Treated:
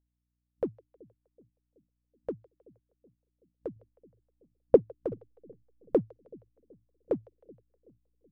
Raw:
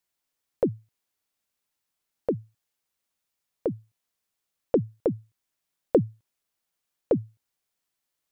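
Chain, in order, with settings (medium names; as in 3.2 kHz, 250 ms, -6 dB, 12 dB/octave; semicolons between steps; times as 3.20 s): 3.76–4.76 s: tilt shelf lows +9 dB, about 1.3 kHz; two-band feedback delay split 510 Hz, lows 377 ms, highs 157 ms, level -13 dB; hum 60 Hz, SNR 22 dB; in parallel at -11 dB: hysteresis with a dead band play -17.5 dBFS; on the sum: spectral noise reduction 12 dB; upward expansion 1.5:1, over -37 dBFS; trim -4 dB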